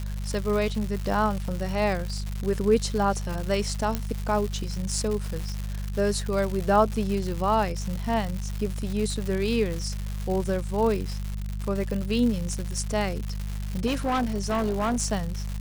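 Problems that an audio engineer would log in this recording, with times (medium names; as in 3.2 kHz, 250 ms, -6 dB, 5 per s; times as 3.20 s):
crackle 250 per s -29 dBFS
hum 50 Hz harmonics 4 -31 dBFS
3.95 s: pop -12 dBFS
13.86–14.96 s: clipped -21.5 dBFS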